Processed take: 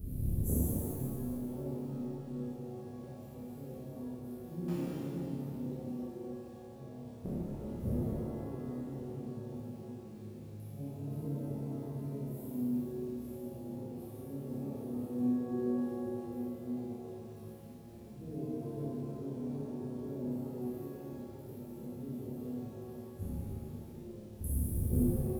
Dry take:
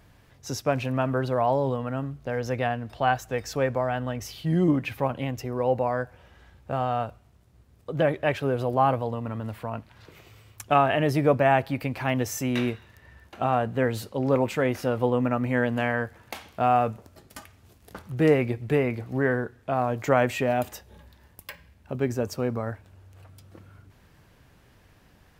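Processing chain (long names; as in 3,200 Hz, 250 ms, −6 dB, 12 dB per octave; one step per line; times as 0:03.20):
inverse Chebyshev band-stop filter 920–5,400 Hz, stop band 50 dB
low-shelf EQ 120 Hz +6 dB
mains-hum notches 60/120/180/240/300/360/420/480/540/600 Hz
delay with pitch and tempo change per echo 161 ms, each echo −1 semitone, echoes 2, each echo −6 dB
in parallel at −6 dB: wrap-around overflow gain 12 dB
on the sum: gate with flip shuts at −31 dBFS, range −34 dB
surface crackle 210 per second −68 dBFS
on a send: flutter between parallel walls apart 4.9 metres, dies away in 0.54 s
on the sum: reverb with rising layers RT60 2.3 s, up +7 semitones, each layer −8 dB, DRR −10 dB
level +4.5 dB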